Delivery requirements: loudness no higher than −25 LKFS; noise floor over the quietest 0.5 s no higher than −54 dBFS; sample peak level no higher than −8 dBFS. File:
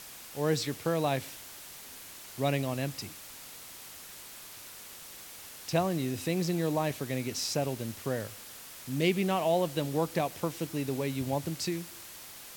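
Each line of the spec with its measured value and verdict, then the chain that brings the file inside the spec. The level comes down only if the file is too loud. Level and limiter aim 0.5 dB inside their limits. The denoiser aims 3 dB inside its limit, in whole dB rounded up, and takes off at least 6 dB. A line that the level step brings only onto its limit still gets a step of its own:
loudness −32.0 LKFS: in spec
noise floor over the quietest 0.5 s −47 dBFS: out of spec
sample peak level −12.5 dBFS: in spec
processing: broadband denoise 10 dB, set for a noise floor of −47 dBFS

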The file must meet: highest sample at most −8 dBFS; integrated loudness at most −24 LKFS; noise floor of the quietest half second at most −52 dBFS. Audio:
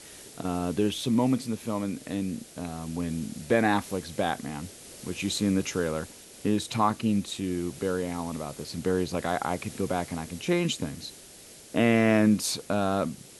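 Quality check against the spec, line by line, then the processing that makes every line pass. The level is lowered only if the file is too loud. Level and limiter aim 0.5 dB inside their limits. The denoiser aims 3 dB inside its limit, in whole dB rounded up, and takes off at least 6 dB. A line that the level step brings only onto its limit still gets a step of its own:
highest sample −10.0 dBFS: in spec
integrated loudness −28.5 LKFS: in spec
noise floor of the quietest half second −49 dBFS: out of spec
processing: broadband denoise 6 dB, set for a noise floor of −49 dBFS

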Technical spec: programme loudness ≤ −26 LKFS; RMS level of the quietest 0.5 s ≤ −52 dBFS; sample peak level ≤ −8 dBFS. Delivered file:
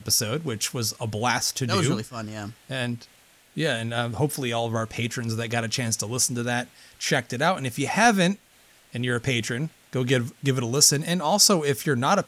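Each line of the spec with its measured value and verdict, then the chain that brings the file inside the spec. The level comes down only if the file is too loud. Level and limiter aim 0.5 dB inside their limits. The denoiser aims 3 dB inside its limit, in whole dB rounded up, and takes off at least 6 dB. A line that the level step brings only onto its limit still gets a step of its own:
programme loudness −24.0 LKFS: out of spec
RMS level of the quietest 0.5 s −56 dBFS: in spec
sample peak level −3.5 dBFS: out of spec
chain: level −2.5 dB
brickwall limiter −8.5 dBFS

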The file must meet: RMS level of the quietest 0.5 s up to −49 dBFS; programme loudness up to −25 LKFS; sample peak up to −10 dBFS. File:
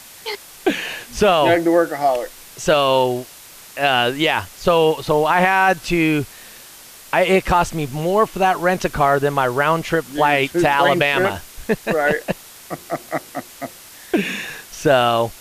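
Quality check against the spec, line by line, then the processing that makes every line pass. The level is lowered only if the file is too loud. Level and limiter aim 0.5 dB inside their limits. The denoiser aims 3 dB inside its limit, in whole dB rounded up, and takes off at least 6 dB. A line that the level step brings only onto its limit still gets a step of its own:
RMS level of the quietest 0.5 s −41 dBFS: out of spec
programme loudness −18.0 LKFS: out of spec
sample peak −4.5 dBFS: out of spec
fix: broadband denoise 6 dB, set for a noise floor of −41 dBFS
level −7.5 dB

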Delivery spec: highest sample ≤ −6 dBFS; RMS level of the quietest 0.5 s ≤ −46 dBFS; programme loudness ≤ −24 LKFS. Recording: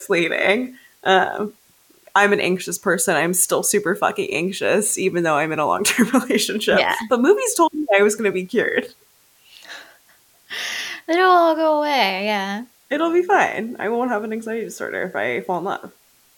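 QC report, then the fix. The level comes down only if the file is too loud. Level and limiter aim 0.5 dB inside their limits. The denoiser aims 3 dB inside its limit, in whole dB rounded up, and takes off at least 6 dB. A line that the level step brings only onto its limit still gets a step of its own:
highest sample −3.5 dBFS: out of spec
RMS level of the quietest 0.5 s −56 dBFS: in spec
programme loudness −19.0 LKFS: out of spec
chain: level −5.5 dB

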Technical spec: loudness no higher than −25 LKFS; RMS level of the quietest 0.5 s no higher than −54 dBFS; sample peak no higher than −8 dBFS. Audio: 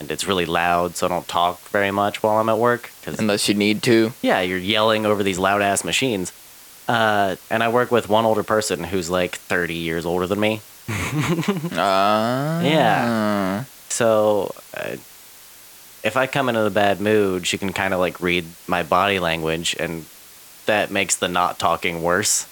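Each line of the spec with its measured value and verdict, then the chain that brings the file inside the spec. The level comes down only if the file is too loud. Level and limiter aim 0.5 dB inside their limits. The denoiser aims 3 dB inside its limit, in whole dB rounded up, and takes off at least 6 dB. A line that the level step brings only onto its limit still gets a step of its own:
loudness −20.0 LKFS: out of spec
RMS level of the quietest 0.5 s −44 dBFS: out of spec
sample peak −4.0 dBFS: out of spec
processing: broadband denoise 8 dB, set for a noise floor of −44 dBFS
level −5.5 dB

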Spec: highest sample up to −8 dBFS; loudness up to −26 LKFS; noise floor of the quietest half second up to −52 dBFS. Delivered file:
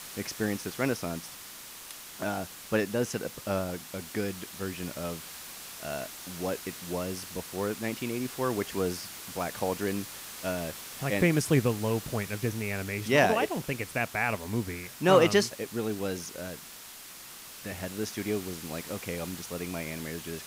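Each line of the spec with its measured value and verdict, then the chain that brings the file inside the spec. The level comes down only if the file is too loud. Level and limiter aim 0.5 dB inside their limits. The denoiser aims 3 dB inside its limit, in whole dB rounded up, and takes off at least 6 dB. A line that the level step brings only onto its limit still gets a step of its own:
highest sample −9.0 dBFS: in spec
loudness −31.0 LKFS: in spec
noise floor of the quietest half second −47 dBFS: out of spec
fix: broadband denoise 8 dB, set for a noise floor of −47 dBFS

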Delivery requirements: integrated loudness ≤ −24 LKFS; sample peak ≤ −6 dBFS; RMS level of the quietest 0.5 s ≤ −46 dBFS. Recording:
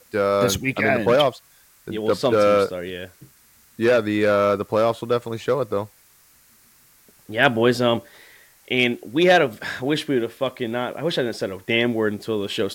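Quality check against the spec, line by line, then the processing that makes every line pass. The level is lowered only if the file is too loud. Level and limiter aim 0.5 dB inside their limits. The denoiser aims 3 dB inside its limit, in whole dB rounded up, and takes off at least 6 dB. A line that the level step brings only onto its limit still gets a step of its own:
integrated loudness −21.0 LKFS: out of spec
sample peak −2.5 dBFS: out of spec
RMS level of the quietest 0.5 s −55 dBFS: in spec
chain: level −3.5 dB
brickwall limiter −6.5 dBFS

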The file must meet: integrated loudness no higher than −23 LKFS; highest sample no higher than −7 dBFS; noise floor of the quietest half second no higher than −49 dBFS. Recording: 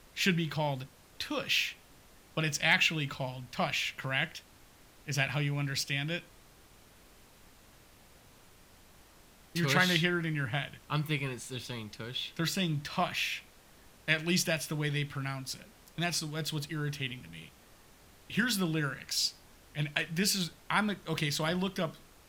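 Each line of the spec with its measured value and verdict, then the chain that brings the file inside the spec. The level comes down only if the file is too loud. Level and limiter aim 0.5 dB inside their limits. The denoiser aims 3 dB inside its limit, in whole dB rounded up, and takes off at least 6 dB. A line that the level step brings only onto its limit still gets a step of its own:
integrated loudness −32.0 LKFS: in spec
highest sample −9.0 dBFS: in spec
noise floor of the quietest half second −58 dBFS: in spec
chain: no processing needed

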